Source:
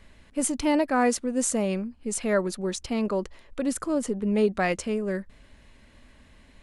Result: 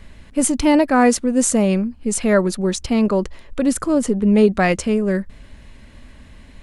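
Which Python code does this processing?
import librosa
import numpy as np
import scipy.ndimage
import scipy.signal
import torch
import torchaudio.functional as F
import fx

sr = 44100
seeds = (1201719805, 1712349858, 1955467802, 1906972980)

y = fx.bass_treble(x, sr, bass_db=5, treble_db=0)
y = y * 10.0 ** (7.5 / 20.0)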